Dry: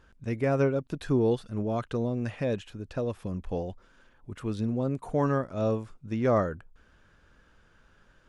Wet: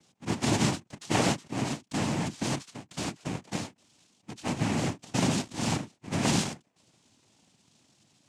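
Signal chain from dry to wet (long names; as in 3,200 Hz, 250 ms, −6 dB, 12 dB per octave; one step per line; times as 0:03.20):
samples in bit-reversed order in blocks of 64 samples
cochlear-implant simulation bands 4
every ending faded ahead of time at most 310 dB per second
level +2.5 dB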